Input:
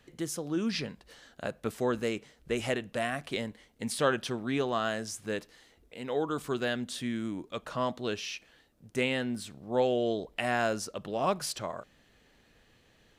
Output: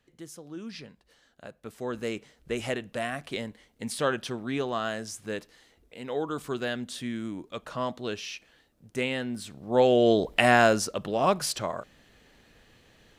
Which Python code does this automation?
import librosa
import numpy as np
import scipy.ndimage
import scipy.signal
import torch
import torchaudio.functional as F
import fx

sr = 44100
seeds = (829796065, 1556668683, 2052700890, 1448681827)

y = fx.gain(x, sr, db=fx.line((1.62, -9.0), (2.11, 0.0), (9.31, 0.0), (10.29, 11.5), (11.18, 5.0)))